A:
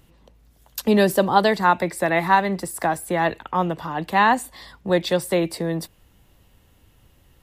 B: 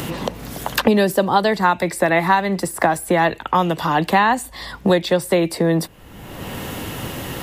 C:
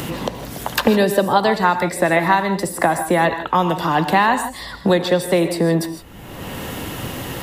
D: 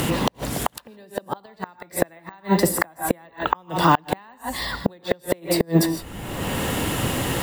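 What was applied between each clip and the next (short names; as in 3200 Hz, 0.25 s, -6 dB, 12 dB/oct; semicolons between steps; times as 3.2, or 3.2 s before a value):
three-band squash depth 100%; gain +3 dB
non-linear reverb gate 0.18 s rising, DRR 9 dB
flipped gate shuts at -8 dBFS, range -35 dB; careless resampling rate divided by 2×, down none, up hold; gain +4 dB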